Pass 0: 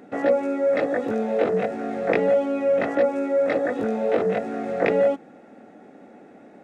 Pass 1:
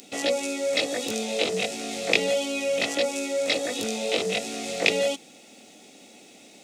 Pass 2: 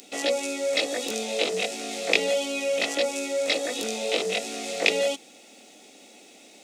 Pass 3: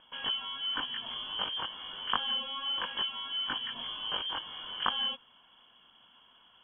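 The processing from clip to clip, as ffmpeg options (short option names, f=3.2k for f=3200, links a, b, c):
-af "aexciter=amount=14:drive=8.5:freq=2.6k,volume=-6dB"
-af "highpass=250"
-af "lowpass=f=3.1k:t=q:w=0.5098,lowpass=f=3.1k:t=q:w=0.6013,lowpass=f=3.1k:t=q:w=0.9,lowpass=f=3.1k:t=q:w=2.563,afreqshift=-3600,volume=-8dB"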